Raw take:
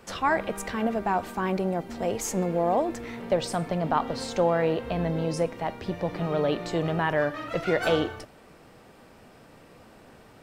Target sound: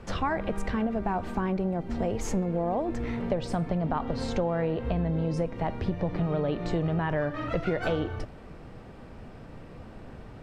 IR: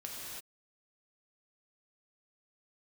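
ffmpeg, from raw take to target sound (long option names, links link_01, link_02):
-af "aemphasis=mode=reproduction:type=bsi,acompressor=threshold=-27dB:ratio=5,volume=2dB"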